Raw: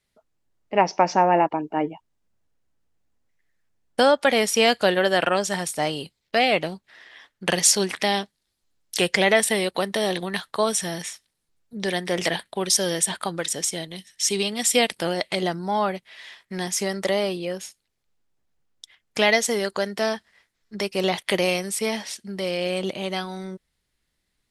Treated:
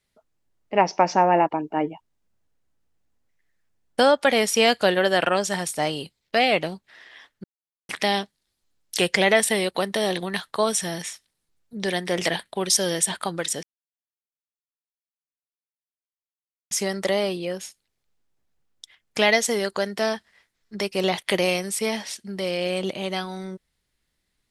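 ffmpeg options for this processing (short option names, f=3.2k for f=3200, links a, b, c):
-filter_complex "[0:a]asplit=5[a][b][c][d][e];[a]atrim=end=7.44,asetpts=PTS-STARTPTS,afade=t=out:st=7.436:d=0.004:c=hsin[f];[b]atrim=start=7.44:end=7.89,asetpts=PTS-STARTPTS,volume=0[g];[c]atrim=start=7.89:end=13.63,asetpts=PTS-STARTPTS,afade=t=in:d=0.004:c=hsin,afade=t=out:st=5.736:d=0.004:c=hsin[h];[d]atrim=start=13.63:end=16.71,asetpts=PTS-STARTPTS,volume=0[i];[e]atrim=start=16.71,asetpts=PTS-STARTPTS,afade=t=in:d=0.004:c=hsin[j];[f][g][h][i][j]concat=n=5:v=0:a=1"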